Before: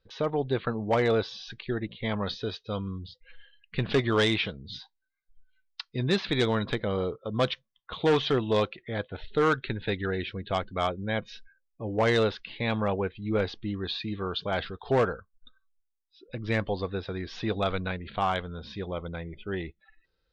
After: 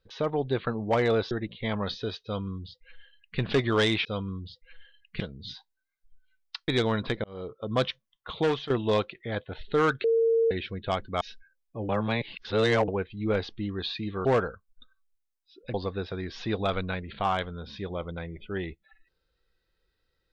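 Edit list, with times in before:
1.31–1.71 cut
2.64–3.79 copy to 4.45
5.93–6.31 cut
6.87–7.29 fade in
8–8.33 fade out, to -13.5 dB
9.67–10.14 bleep 456 Hz -19.5 dBFS
10.84–11.26 cut
11.94–12.93 reverse
14.3–14.9 cut
16.39–16.71 cut

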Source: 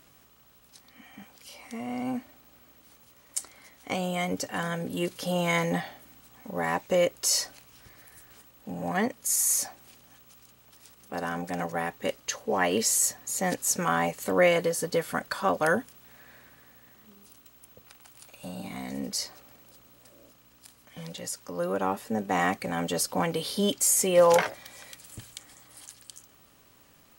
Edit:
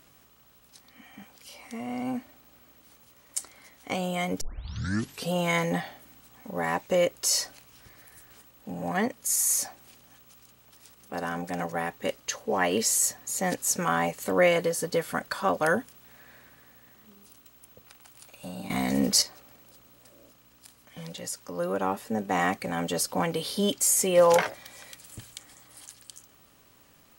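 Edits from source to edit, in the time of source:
4.41 tape start 0.91 s
18.7–19.22 gain +9.5 dB

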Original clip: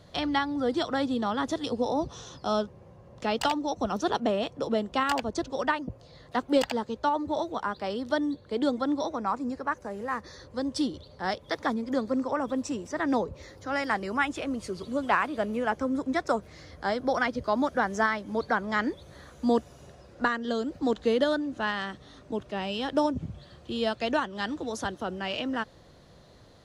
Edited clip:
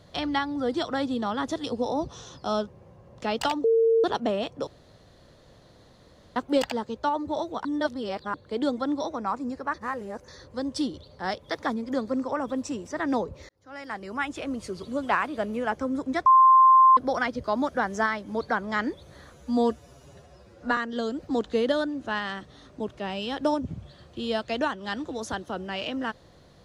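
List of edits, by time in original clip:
3.64–4.04 bleep 454 Hz -17 dBFS
4.67–6.36 room tone
7.65–8.34 reverse
9.74–10.28 reverse
13.49–14.5 fade in
16.26–16.97 bleep 1050 Hz -12 dBFS
19.33–20.29 stretch 1.5×

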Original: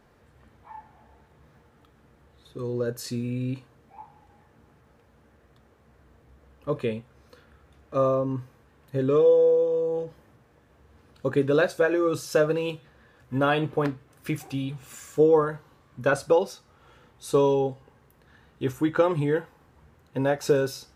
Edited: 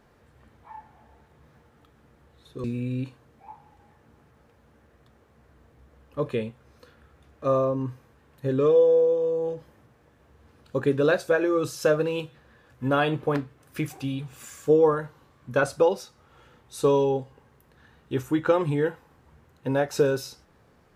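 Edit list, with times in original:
2.64–3.14 cut

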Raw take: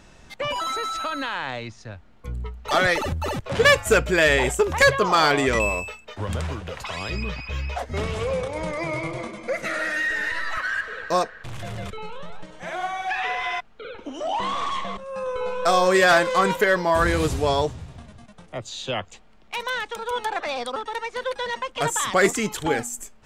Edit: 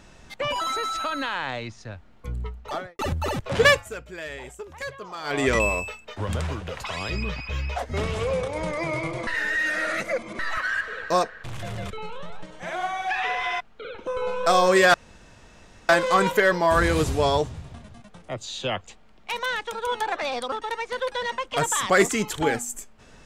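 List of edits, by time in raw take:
2.44–2.99 studio fade out
3.66–5.47 dip -18 dB, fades 0.23 s
9.27–10.39 reverse
14.07–15.26 cut
16.13 insert room tone 0.95 s

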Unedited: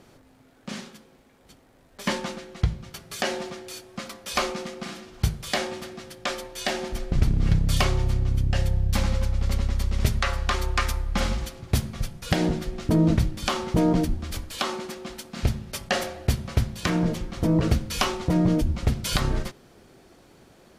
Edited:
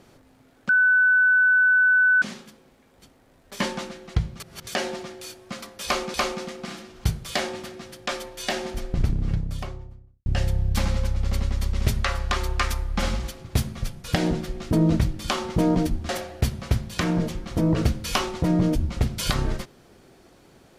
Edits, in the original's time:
0.69 add tone 1500 Hz -14.5 dBFS 1.53 s
2.87–3.14 reverse
4.32–4.61 loop, 2 plays
6.8–8.44 studio fade out
14.27–15.95 cut

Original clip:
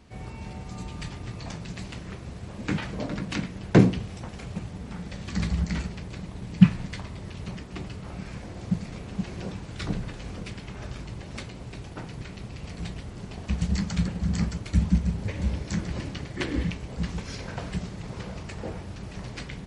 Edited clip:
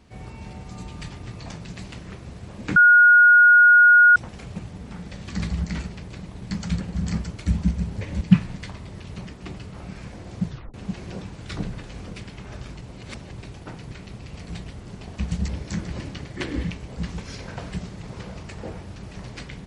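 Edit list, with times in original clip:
2.76–4.16 bleep 1440 Hz -9 dBFS
8.76 tape stop 0.28 s
11.11–11.71 reverse
13.78–15.48 move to 6.51

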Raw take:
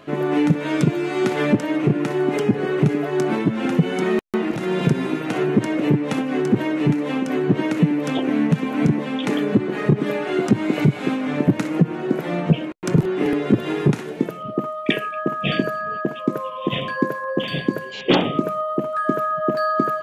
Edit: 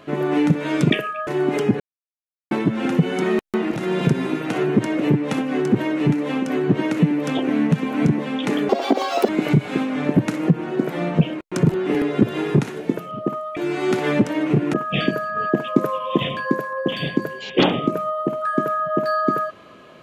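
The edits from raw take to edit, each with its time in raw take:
0.9–2.07 swap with 14.88–15.25
2.6–3.31 mute
9.49–10.6 speed 186%
15.88–16.71 gain +4 dB

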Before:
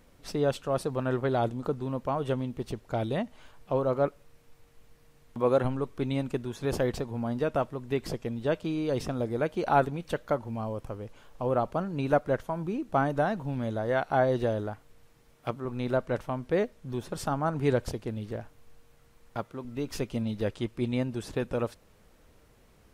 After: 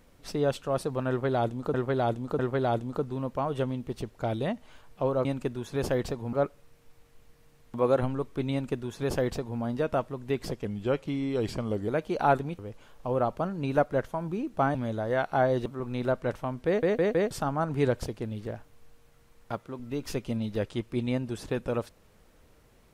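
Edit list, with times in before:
1.09–1.74 loop, 3 plays
6.14–7.22 copy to 3.95
8.27–9.35 speed 88%
10.06–10.94 cut
13.1–13.53 cut
14.44–15.51 cut
16.52 stutter in place 0.16 s, 4 plays

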